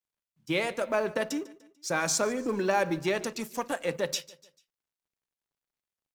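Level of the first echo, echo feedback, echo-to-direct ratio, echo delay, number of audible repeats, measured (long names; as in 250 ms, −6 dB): −20.0 dB, 44%, −19.0 dB, 147 ms, 3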